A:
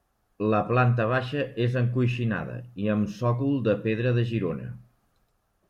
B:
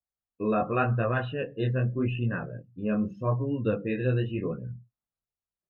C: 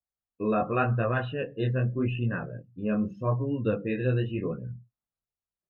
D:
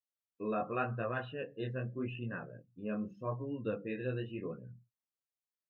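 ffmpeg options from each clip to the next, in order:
-af "afftdn=nr=27:nf=-38,flanger=delay=16.5:depth=6.9:speed=0.85"
-af anull
-af "highpass=f=190:p=1,volume=0.398"

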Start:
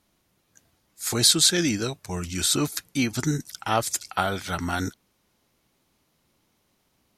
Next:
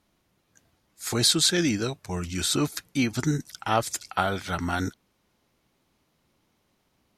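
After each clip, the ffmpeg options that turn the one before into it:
-af "highshelf=f=5300:g=-6.5"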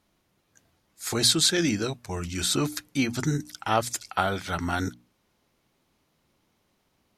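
-af "bandreject=f=60:t=h:w=6,bandreject=f=120:t=h:w=6,bandreject=f=180:t=h:w=6,bandreject=f=240:t=h:w=6,bandreject=f=300:t=h:w=6"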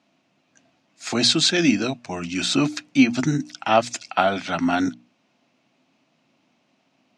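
-af "highpass=f=130:w=0.5412,highpass=f=130:w=1.3066,equalizer=f=260:t=q:w=4:g=9,equalizer=f=430:t=q:w=4:g=-5,equalizer=f=670:t=q:w=4:g=8,equalizer=f=2600:t=q:w=4:g=8,lowpass=f=6800:w=0.5412,lowpass=f=6800:w=1.3066,volume=1.41"

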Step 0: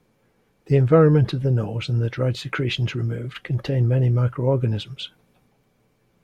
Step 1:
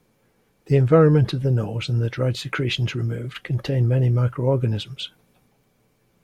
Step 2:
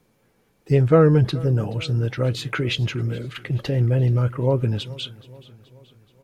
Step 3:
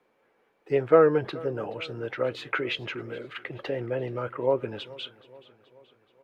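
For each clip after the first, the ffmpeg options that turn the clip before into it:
-af "highshelf=f=5600:g=6"
-af "aecho=1:1:427|854|1281|1708:0.0891|0.0481|0.026|0.014"
-filter_complex "[0:a]acrossover=split=330 3000:gain=0.0794 1 0.126[s0][s1][s2];[s0][s1][s2]amix=inputs=3:normalize=0"

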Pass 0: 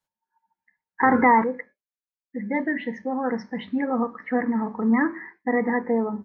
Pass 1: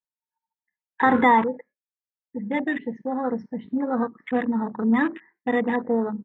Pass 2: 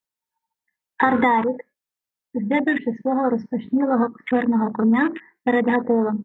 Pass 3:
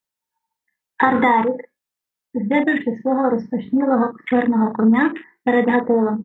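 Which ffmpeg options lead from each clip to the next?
-af "afwtdn=0.0316"
-af "acompressor=threshold=0.1:ratio=10,volume=2.11"
-filter_complex "[0:a]asplit=2[s0][s1];[s1]adelay=41,volume=0.355[s2];[s0][s2]amix=inputs=2:normalize=0,volume=1.26"

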